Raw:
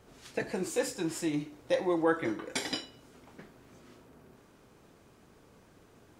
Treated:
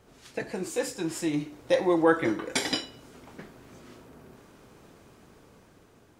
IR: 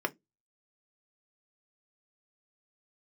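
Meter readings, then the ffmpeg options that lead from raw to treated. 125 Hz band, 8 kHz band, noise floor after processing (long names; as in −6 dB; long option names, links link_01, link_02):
+4.0 dB, +3.5 dB, −58 dBFS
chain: -af "dynaudnorm=framelen=530:gausssize=5:maxgain=6dB"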